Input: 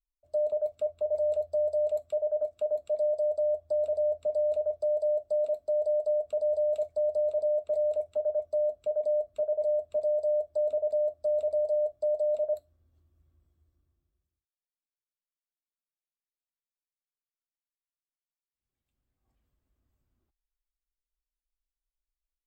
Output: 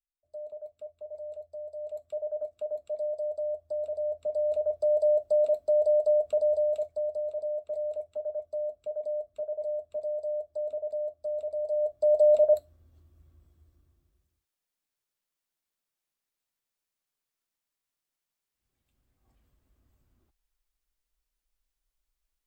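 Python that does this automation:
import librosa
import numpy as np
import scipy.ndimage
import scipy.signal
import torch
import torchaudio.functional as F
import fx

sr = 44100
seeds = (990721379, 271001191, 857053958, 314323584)

y = fx.gain(x, sr, db=fx.line((1.72, -12.5), (2.17, -4.5), (3.95, -4.5), (5.03, 4.0), (6.32, 4.0), (7.22, -5.0), (11.56, -5.0), (12.23, 8.0)))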